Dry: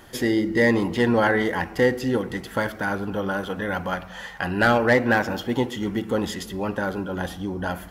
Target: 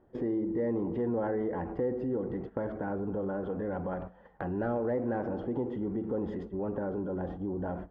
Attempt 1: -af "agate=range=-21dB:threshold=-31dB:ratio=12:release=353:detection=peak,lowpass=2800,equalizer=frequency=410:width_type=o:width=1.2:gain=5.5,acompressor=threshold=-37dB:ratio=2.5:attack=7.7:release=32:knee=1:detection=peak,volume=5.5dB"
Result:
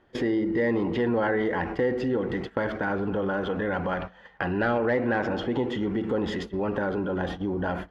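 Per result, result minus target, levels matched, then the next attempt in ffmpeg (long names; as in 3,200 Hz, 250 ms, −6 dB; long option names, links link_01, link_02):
2,000 Hz band +10.5 dB; downward compressor: peak gain reduction −5.5 dB
-af "agate=range=-21dB:threshold=-31dB:ratio=12:release=353:detection=peak,lowpass=780,equalizer=frequency=410:width_type=o:width=1.2:gain=5.5,acompressor=threshold=-37dB:ratio=2.5:attack=7.7:release=32:knee=1:detection=peak,volume=5.5dB"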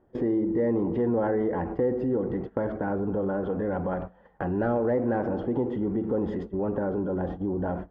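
downward compressor: peak gain reduction −5.5 dB
-af "agate=range=-21dB:threshold=-31dB:ratio=12:release=353:detection=peak,lowpass=780,equalizer=frequency=410:width_type=o:width=1.2:gain=5.5,acompressor=threshold=-46.5dB:ratio=2.5:attack=7.7:release=32:knee=1:detection=peak,volume=5.5dB"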